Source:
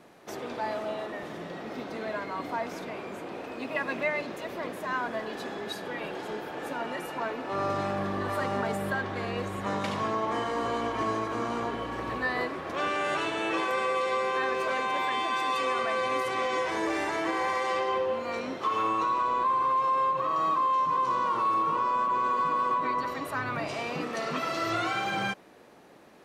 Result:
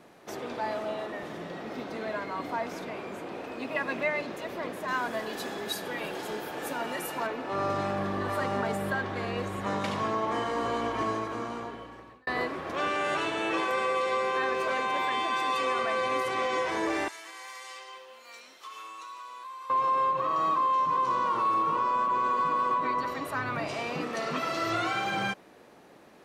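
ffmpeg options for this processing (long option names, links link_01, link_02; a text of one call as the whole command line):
ffmpeg -i in.wav -filter_complex "[0:a]asettb=1/sr,asplit=3[link_01][link_02][link_03];[link_01]atrim=end=4.884[link_04];[link_02]atrim=start=4.88:end=7.27,asetpts=PTS-STARTPTS,afade=type=in:duration=0.004:curve=qsin,afade=type=out:start_time=2.386:duration=0.004:curve=qsin,aemphasis=mode=production:type=50kf[link_05];[link_03]atrim=start=7.266[link_06];[link_04][link_05]acrossfade=duration=0.004:curve1=hsin:curve2=qsin[link_07];[link_07][link_06]acrossfade=duration=0.004:curve1=qsin:curve2=hsin,asettb=1/sr,asplit=3[link_08][link_09][link_10];[link_08]atrim=end=17.084[link_11];[link_09]atrim=start=17.08:end=19.7,asetpts=PTS-STARTPTS,afade=type=in:duration=0.004:curve=qsin,afade=type=out:start_time=2.616:duration=0.004:curve=qsin,aderivative[link_12];[link_10]atrim=start=19.696[link_13];[link_11][link_12]acrossfade=duration=0.004:curve1=hsin:curve2=qsin[link_14];[link_14][link_13]acrossfade=duration=0.004:curve1=qsin:curve2=hsin,asplit=2[link_15][link_16];[link_15]atrim=end=12.27,asetpts=PTS-STARTPTS,afade=type=out:start_time=10.98:duration=1.29[link_17];[link_16]atrim=start=12.27,asetpts=PTS-STARTPTS,afade=type=in:duration=0.004:curve=hsin[link_18];[link_17][link_18]concat=n=2:v=0:a=1" out.wav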